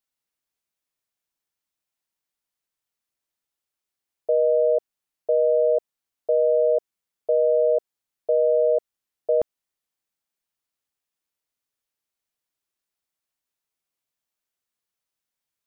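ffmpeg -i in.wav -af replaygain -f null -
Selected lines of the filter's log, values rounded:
track_gain = +4.1 dB
track_peak = 0.162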